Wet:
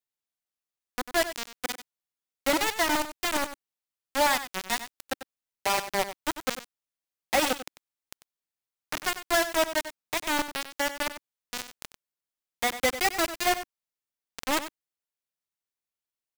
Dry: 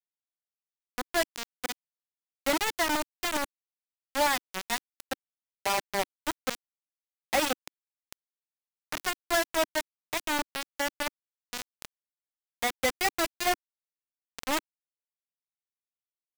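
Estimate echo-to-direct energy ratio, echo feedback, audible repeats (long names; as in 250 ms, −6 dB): −12.0 dB, repeats not evenly spaced, 1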